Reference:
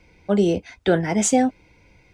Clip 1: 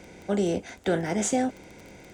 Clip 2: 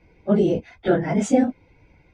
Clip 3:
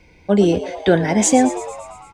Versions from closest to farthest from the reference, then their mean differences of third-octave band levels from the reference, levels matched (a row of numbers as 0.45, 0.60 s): 3, 2, 1; 3.5, 4.5, 6.5 dB